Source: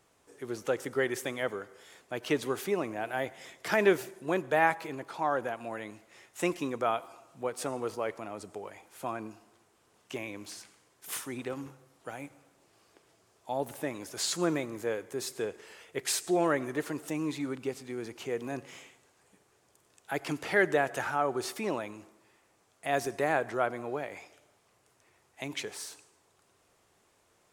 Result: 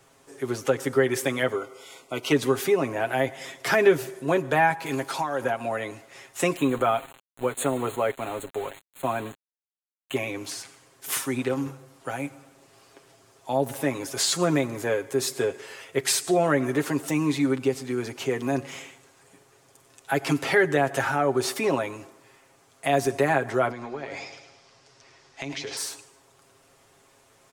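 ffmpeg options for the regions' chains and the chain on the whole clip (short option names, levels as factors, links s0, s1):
-filter_complex "[0:a]asettb=1/sr,asplit=3[s0][s1][s2];[s0]atrim=end=1.554[s3];[s1]atrim=start=1.55:end=2.32,asetpts=PTS-STARTPTS,afade=t=in:d=0.004:c=qsin,afade=t=out:st=0.766:d=0.004:c=qsin,asuperstop=centerf=1700:order=20:qfactor=4.1,equalizer=f=74:w=0.52:g=-7[s4];[s2]atrim=start=2.316[s5];[s3][s4]acrossfade=d=0.004:c1=hsin:c2=qsin[s6];[s6][s5]acrossfade=d=0.004:c1=qsin:c2=hsin,asettb=1/sr,asplit=3[s7][s8][s9];[s7]atrim=end=4.864[s10];[s8]atrim=start=4.86:end=5.44,asetpts=PTS-STARTPTS,afade=t=in:d=0.004:c=qsin,afade=t=out:st=0.576:d=0.004:c=qsin,highshelf=f=3300:g=10.5,acompressor=threshold=0.0251:ratio=5:attack=3.2:release=140:knee=1:detection=peak[s11];[s9]atrim=start=5.436[s12];[s10][s11]acrossfade=d=0.004:c1=hsin:c2=qsin[s13];[s13][s12]acrossfade=d=0.004:c1=qsin:c2=hsin,asettb=1/sr,asplit=3[s14][s15][s16];[s14]atrim=end=6.564[s17];[s15]atrim=start=6.56:end=10.16,asetpts=PTS-STARTPTS,afade=t=in:d=0.004:c=qsin,afade=t=out:st=3.596:d=0.004:c=qsin,aeval=exprs='val(0)*gte(abs(val(0)),0.00562)':c=same,asuperstop=centerf=5300:order=12:qfactor=2.3[s18];[s16]atrim=start=10.156[s19];[s17][s18]acrossfade=d=0.004:c1=hsin:c2=qsin[s20];[s20][s19]acrossfade=d=0.004:c1=qsin:c2=hsin,asettb=1/sr,asplit=3[s21][s22][s23];[s21]atrim=end=23.714[s24];[s22]atrim=start=23.71:end=25.77,asetpts=PTS-STARTPTS,afade=t=in:d=0.004:c=qsin,afade=t=out:st=2.056:d=0.004:c=qsin,lowpass=f=5200:t=q:w=2.7,acompressor=threshold=0.01:ratio=6:attack=3.2:release=140:knee=1:detection=peak,aecho=1:1:105|210|315|420|525:0.355|0.156|0.0687|0.0302|0.0133,atrim=end_sample=90846[s25];[s23]atrim=start=25.766[s26];[s24][s25]acrossfade=d=0.004:c1=hsin:c2=qsin[s27];[s27][s26]acrossfade=d=0.004:c1=qsin:c2=hsin,aecho=1:1:7.4:0.65,acrossover=split=270[s28][s29];[s29]acompressor=threshold=0.0316:ratio=2[s30];[s28][s30]amix=inputs=2:normalize=0,volume=2.51"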